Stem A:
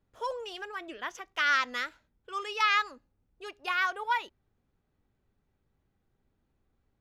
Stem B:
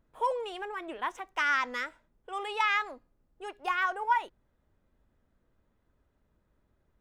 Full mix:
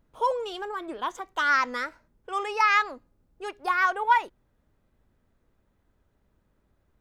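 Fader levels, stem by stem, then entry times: −0.5, +2.0 decibels; 0.00, 0.00 seconds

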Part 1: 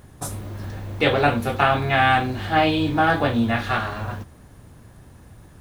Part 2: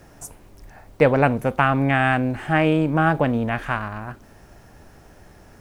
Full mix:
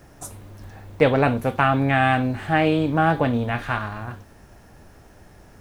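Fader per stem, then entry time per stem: −9.5, −1.5 decibels; 0.00, 0.00 seconds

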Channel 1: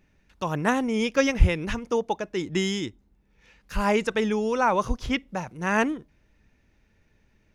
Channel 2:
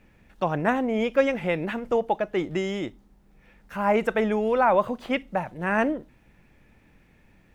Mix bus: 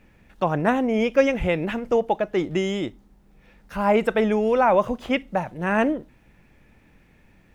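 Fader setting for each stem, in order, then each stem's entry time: −13.0, +2.0 decibels; 0.00, 0.00 seconds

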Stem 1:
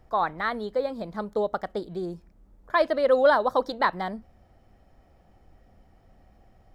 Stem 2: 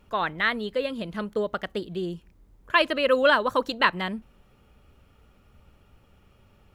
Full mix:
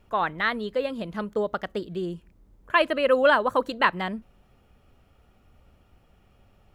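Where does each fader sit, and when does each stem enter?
−7.5, −3.0 decibels; 0.00, 0.00 seconds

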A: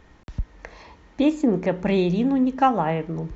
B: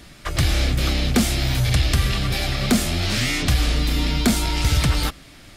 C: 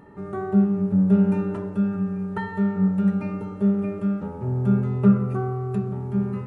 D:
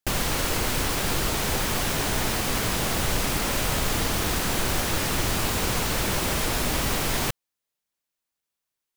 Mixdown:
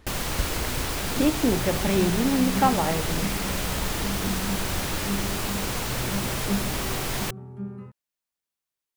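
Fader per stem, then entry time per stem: −3.0, −17.0, −11.0, −3.5 decibels; 0.00, 0.00, 1.45, 0.00 seconds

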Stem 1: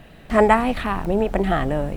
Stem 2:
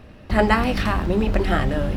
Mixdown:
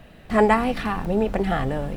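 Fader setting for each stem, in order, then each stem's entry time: −3.0, −10.0 decibels; 0.00, 0.00 seconds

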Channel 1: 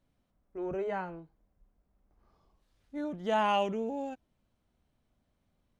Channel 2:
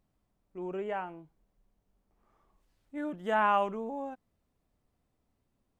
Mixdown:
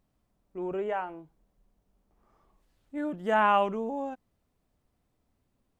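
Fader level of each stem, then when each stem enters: −10.5, +2.0 decibels; 0.00, 0.00 seconds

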